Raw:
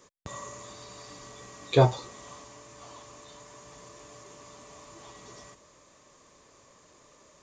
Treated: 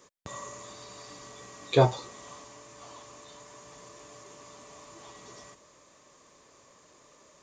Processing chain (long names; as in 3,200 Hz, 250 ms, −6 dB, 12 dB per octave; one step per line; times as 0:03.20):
low-shelf EQ 100 Hz −7 dB